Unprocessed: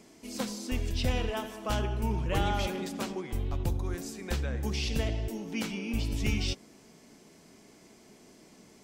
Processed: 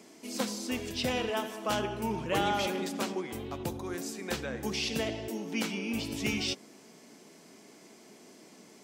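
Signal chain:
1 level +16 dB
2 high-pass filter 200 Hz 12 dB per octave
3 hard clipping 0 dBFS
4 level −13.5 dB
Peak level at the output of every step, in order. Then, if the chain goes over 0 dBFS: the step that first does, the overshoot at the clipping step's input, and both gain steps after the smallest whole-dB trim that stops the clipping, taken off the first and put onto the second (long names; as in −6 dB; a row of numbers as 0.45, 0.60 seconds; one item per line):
−2.0, −3.0, −3.0, −16.5 dBFS
no step passes full scale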